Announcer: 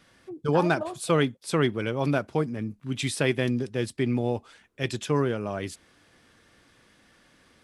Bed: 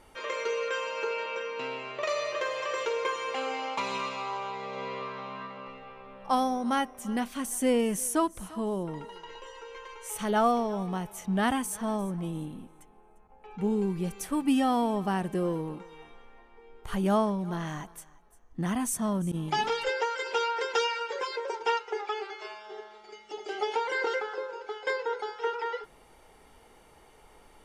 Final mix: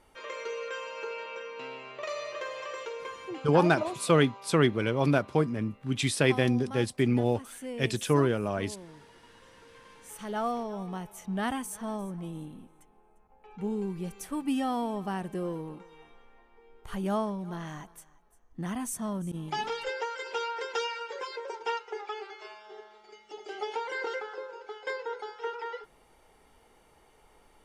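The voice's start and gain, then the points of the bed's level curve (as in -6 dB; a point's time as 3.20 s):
3.00 s, +0.5 dB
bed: 2.62 s -5.5 dB
3.51 s -13.5 dB
9.35 s -13.5 dB
10.83 s -4.5 dB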